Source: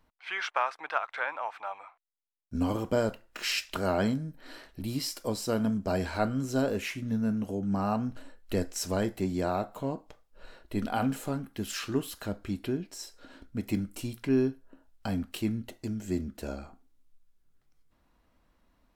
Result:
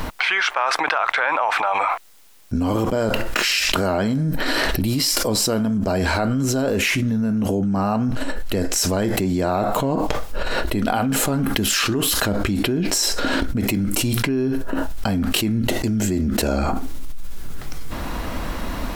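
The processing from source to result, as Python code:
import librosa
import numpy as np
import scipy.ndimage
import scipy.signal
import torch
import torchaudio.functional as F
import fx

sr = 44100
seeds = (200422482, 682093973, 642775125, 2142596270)

y = fx.env_flatten(x, sr, amount_pct=100)
y = y * librosa.db_to_amplitude(2.0)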